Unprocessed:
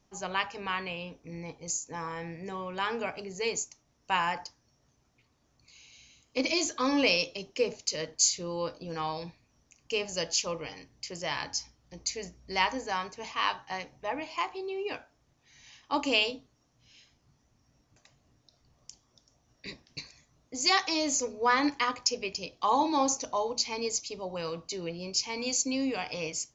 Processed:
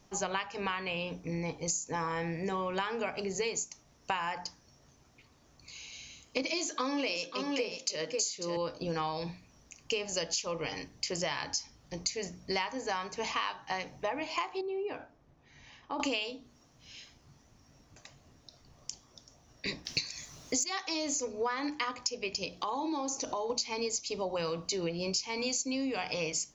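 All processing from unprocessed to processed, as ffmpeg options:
-filter_complex "[0:a]asettb=1/sr,asplit=3[a][b][c];[a]atrim=end=6.424[d];[b]atrim=start=6.42:end=8.57,asetpts=PTS-STARTPTS,afade=t=in:d=0.004:c=qsin,afade=t=out:st=2.146:d=0.004:c=qsin,highpass=180,aecho=1:1:542:0.299,atrim=end_sample=94815[e];[c]atrim=start=8.566[f];[d][e]acrossfade=d=0.004:c1=hsin:c2=qsin[g];[g][f]acrossfade=d=0.004:c1=qsin:c2=hsin,asettb=1/sr,asplit=3[h][i][j];[h]atrim=end=14.614[k];[i]atrim=start=14.61:end=16,asetpts=PTS-STARTPTS,afade=t=in:d=0.004:c=qsin,afade=t=out:st=1.386:d=0.004:c=qsin,acompressor=threshold=-42dB:ratio=2.5:attack=3.2:release=140:knee=1:detection=peak,lowpass=f=1k:p=1[l];[j]atrim=start=15.996[m];[k][l]acrossfade=d=0.004:c1=hsin:c2=qsin[n];[n][m]acrossfade=d=0.004:c1=qsin:c2=hsin,asettb=1/sr,asplit=3[o][p][q];[o]atrim=end=19.854[r];[p]atrim=start=19.85:end=20.64,asetpts=PTS-STARTPTS,afade=t=in:d=0.004:c=qsin,afade=t=out:st=0.786:d=0.004:c=qsin,highshelf=f=2.3k:g=12,acontrast=54[s];[q]atrim=start=20.636[t];[r][s]acrossfade=d=0.004:c1=hsin:c2=qsin[u];[u][t]acrossfade=d=0.004:c1=qsin:c2=hsin,asettb=1/sr,asplit=3[v][w][x];[v]atrim=end=22.584[y];[w]atrim=start=22.58:end=23.5,asetpts=PTS-STARTPTS,afade=t=in:d=0.004:c=qsin,afade=t=out:st=0.916:d=0.004:c=qsin,equalizer=f=350:t=o:w=0.46:g=7,acompressor=threshold=-39dB:ratio=4:attack=3.2:release=140:knee=1:detection=peak[z];[x]atrim=start=23.496[aa];[y][z]acrossfade=d=0.004:c1=hsin:c2=qsin[ab];[ab][aa]acrossfade=d=0.004:c1=qsin:c2=hsin,bandreject=f=60:t=h:w=6,bandreject=f=120:t=h:w=6,bandreject=f=180:t=h:w=6,bandreject=f=240:t=h:w=6,bandreject=f=300:t=h:w=6,acompressor=threshold=-38dB:ratio=12,volume=8dB"

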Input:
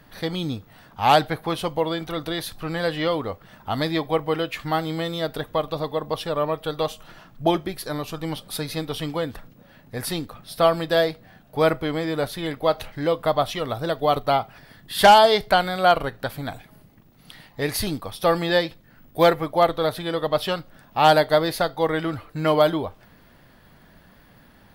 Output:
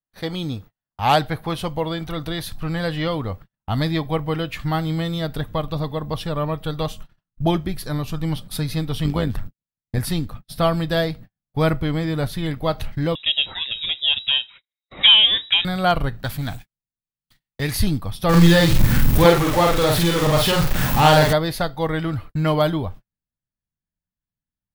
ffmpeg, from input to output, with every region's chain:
-filter_complex "[0:a]asettb=1/sr,asplit=3[a][b][c];[a]atrim=end=9.044[d];[b]atrim=start=9.04:end=9.99,asetpts=PTS-STARTPTS,afade=t=in:d=0.004:c=qsin,afade=t=out:st=0.946:d=0.004:c=qsin,agate=range=-33dB:threshold=-43dB:ratio=3:release=100:detection=peak,acontrast=43,tremolo=f=99:d=0.667[e];[c]atrim=start=9.986[f];[d][e]acrossfade=d=0.004:c1=hsin:c2=qsin[g];[g][f]acrossfade=d=0.004:c1=qsin:c2=hsin,asettb=1/sr,asplit=3[h][i][j];[h]atrim=end=13.154[k];[i]atrim=start=13.15:end=15.65,asetpts=PTS-STARTPTS,afade=t=in:d=0.004:c=qsin,afade=t=out:st=2.496:d=0.004:c=qsin,acrossover=split=2700[l][m];[m]acompressor=threshold=-33dB:ratio=4:attack=1:release=60[n];[l][n]amix=inputs=2:normalize=0,lowpass=f=3.3k:t=q:w=0.5098,lowpass=f=3.3k:t=q:w=0.6013,lowpass=f=3.3k:t=q:w=0.9,lowpass=f=3.3k:t=q:w=2.563,afreqshift=-3900[o];[j]atrim=start=15.646[p];[k][o]acrossfade=d=0.004:c1=hsin:c2=qsin[q];[q][p]acrossfade=d=0.004:c1=qsin:c2=hsin,asettb=1/sr,asplit=3[r][s][t];[r]atrim=end=16.234[u];[s]atrim=start=16.23:end=17.75,asetpts=PTS-STARTPTS,afade=t=in:d=0.004:c=qsin,afade=t=out:st=1.516:d=0.004:c=qsin,aeval=exprs='val(0)+0.5*0.0106*sgn(val(0))':c=same,tiltshelf=f=1.3k:g=-3.5,agate=range=-33dB:threshold=-35dB:ratio=3:release=100:detection=peak[v];[t]atrim=start=17.746[w];[u][v]acrossfade=d=0.004:c1=hsin:c2=qsin[x];[x][w]acrossfade=d=0.004:c1=qsin:c2=hsin,asettb=1/sr,asplit=3[y][z][aa];[y]atrim=end=18.294[ab];[z]atrim=start=18.29:end=21.33,asetpts=PTS-STARTPTS,afade=t=in:d=0.004:c=qsin,afade=t=out:st=3.036:d=0.004:c=qsin,aeval=exprs='val(0)+0.5*0.106*sgn(val(0))':c=same,bandreject=f=670:w=10,asplit=2[ac][ad];[ad]adelay=47,volume=-2dB[ae];[ac][ae]amix=inputs=2:normalize=0,atrim=end_sample=134064[af];[aa]atrim=start=21.326[ag];[ab][af]acrossfade=d=0.004:c1=hsin:c2=qsin[ah];[ah][ag]acrossfade=d=0.004:c1=qsin:c2=hsin,agate=range=-47dB:threshold=-40dB:ratio=16:detection=peak,asubboost=boost=4.5:cutoff=200"

